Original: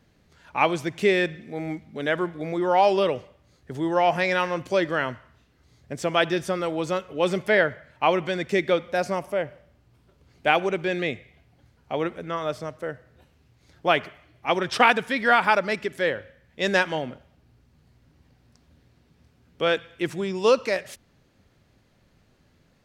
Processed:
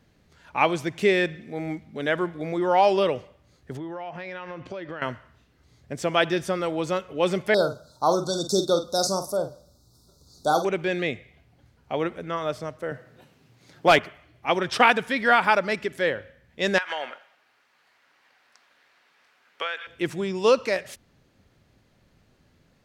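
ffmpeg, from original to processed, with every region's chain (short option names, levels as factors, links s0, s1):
-filter_complex "[0:a]asettb=1/sr,asplit=3[s0][s1][s2];[s0]atrim=end=3.774[s3];[s1]atrim=start=3.77:end=5.02,asetpts=PTS-STARTPTS,afade=t=in:d=0.004:c=qsin,afade=t=out:st=1.246:d=0.004:c=qsin,lowpass=3600,acompressor=threshold=0.0282:ratio=12:attack=3.2:release=140:knee=1:detection=peak[s4];[s2]atrim=start=5.016[s5];[s3][s4]acrossfade=d=0.004:c1=hsin:c2=qsin[s6];[s6][s5]acrossfade=d=0.004:c1=qsin:c2=hsin,asettb=1/sr,asplit=3[s7][s8][s9];[s7]atrim=end=7.544[s10];[s8]atrim=start=7.54:end=10.65,asetpts=PTS-STARTPTS,afade=t=in:d=0.004:c=qsin,afade=t=out:st=3.106:d=0.004:c=qsin,asuperstop=centerf=2300:order=20:qfactor=1.1,highshelf=f=3300:t=q:w=1.5:g=13.5,asplit=2[s11][s12];[s12]adelay=47,volume=0.335[s13];[s11][s13]amix=inputs=2:normalize=0,atrim=end_sample=137151[s14];[s9]atrim=start=10.646[s15];[s10][s14]acrossfade=d=0.004:c1=hsin:c2=qsin[s16];[s16][s15]acrossfade=d=0.004:c1=qsin:c2=hsin,asettb=1/sr,asplit=3[s17][s18][s19];[s17]atrim=end=12.914[s20];[s18]atrim=start=12.91:end=13.99,asetpts=PTS-STARTPTS,afade=t=in:d=0.004:c=qsin,afade=t=out:st=1.076:d=0.004:c=qsin,highpass=f=120:w=0.5412,highpass=f=120:w=1.3066,acontrast=37,volume=2.82,asoftclip=hard,volume=0.355[s21];[s19]atrim=start=13.986[s22];[s20][s21]acrossfade=d=0.004:c1=hsin:c2=qsin[s23];[s23][s22]acrossfade=d=0.004:c1=qsin:c2=hsin,asettb=1/sr,asplit=3[s24][s25][s26];[s24]atrim=end=16.784[s27];[s25]atrim=start=16.78:end=19.87,asetpts=PTS-STARTPTS,afade=t=in:d=0.004:c=qsin,afade=t=out:st=3.086:d=0.004:c=qsin,highpass=690,equalizer=f=1700:t=o:w=2.4:g=11.5,acompressor=threshold=0.0631:ratio=20:attack=3.2:release=140:knee=1:detection=peak[s28];[s26]atrim=start=19.866[s29];[s27][s28]acrossfade=d=0.004:c1=hsin:c2=qsin[s30];[s30][s29]acrossfade=d=0.004:c1=qsin:c2=hsin"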